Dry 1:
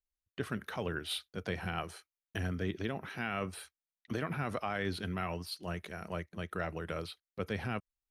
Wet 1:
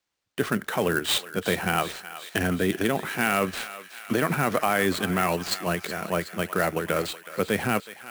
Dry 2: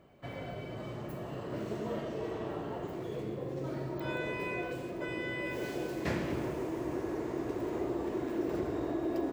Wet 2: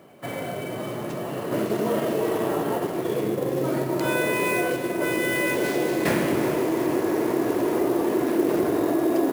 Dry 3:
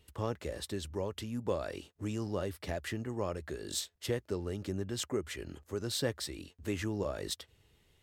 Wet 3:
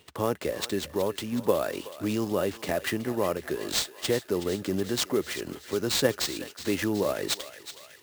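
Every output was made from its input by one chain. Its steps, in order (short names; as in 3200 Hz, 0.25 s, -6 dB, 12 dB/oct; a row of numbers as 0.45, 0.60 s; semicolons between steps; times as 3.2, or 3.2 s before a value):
HPF 170 Hz 12 dB/oct; in parallel at +1 dB: level quantiser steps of 10 dB; on the sum: sample-rate reducer 12000 Hz, jitter 20%; thinning echo 0.371 s, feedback 70%, high-pass 900 Hz, level -12.5 dB; normalise peaks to -9 dBFS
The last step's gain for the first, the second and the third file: +8.5, +8.0, +5.0 dB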